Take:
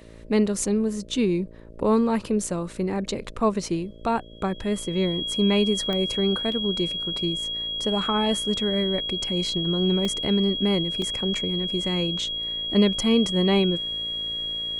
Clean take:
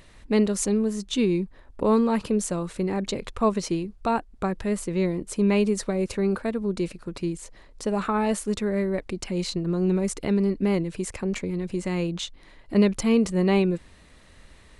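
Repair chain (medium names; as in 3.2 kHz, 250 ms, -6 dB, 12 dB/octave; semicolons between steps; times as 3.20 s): de-click; de-hum 56.3 Hz, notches 11; band-stop 3.3 kHz, Q 30; interpolate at 6.52/10.05/11.02 s, 2.5 ms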